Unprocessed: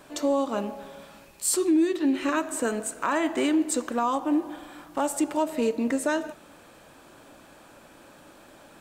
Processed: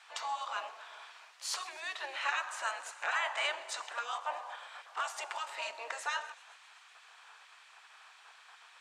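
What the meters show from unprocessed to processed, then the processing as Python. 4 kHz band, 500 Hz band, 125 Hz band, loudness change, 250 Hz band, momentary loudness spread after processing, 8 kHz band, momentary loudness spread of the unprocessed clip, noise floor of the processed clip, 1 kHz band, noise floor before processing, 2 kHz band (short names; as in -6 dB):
-0.5 dB, -19.0 dB, n/a, -11.0 dB, under -40 dB, 22 LU, -13.0 dB, 13 LU, -59 dBFS, -6.5 dB, -52 dBFS, -1.0 dB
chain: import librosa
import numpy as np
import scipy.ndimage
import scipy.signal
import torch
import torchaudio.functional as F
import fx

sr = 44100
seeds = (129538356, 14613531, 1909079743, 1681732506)

p1 = fx.spec_gate(x, sr, threshold_db=-10, keep='weak')
p2 = scipy.signal.sosfilt(scipy.signal.butter(4, 740.0, 'highpass', fs=sr, output='sos'), p1)
p3 = fx.air_absorb(p2, sr, metres=100.0)
p4 = p3 + fx.echo_wet_highpass(p3, sr, ms=129, feedback_pct=77, hz=3700.0, wet_db=-19, dry=0)
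y = p4 * librosa.db_to_amplitude(2.5)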